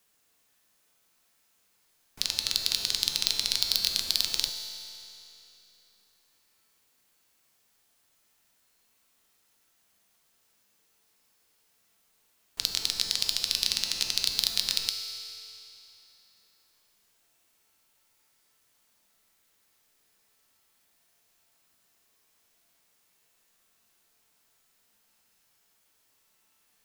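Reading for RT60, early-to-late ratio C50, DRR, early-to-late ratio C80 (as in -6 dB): 3.0 s, 5.5 dB, 4.0 dB, 6.0 dB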